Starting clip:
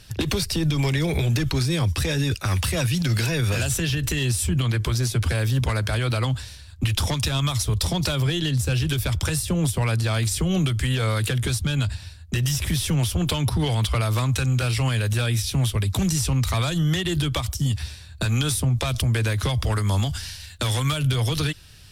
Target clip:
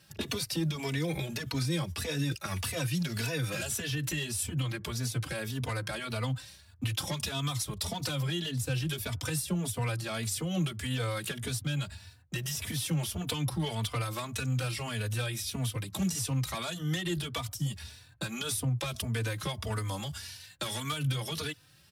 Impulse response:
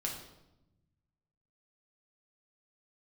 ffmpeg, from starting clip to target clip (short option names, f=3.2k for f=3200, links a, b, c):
-filter_complex "[0:a]highpass=130,equalizer=f=12k:w=1.5:g=3,bandreject=f=380:w=12,acrossover=split=2000[a][b];[b]aeval=exprs='sgn(val(0))*max(abs(val(0))-0.00126,0)':c=same[c];[a][c]amix=inputs=2:normalize=0,asplit=2[d][e];[e]adelay=3.3,afreqshift=1.7[f];[d][f]amix=inputs=2:normalize=1,volume=-5dB"